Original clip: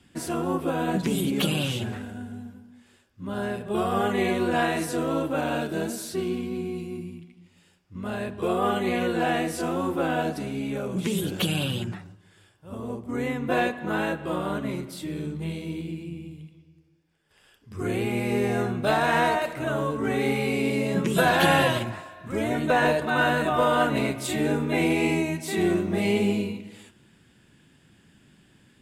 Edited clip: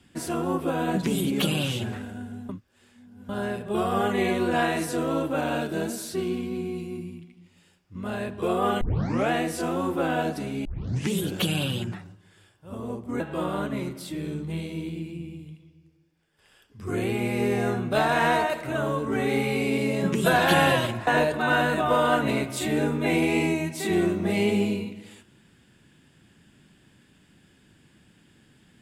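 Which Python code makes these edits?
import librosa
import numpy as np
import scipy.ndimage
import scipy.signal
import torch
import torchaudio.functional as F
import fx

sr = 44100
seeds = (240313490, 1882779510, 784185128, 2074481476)

y = fx.edit(x, sr, fx.reverse_span(start_s=2.49, length_s=0.8),
    fx.tape_start(start_s=8.81, length_s=0.5),
    fx.tape_start(start_s=10.65, length_s=0.46),
    fx.cut(start_s=13.2, length_s=0.92),
    fx.cut(start_s=21.99, length_s=0.76), tone=tone)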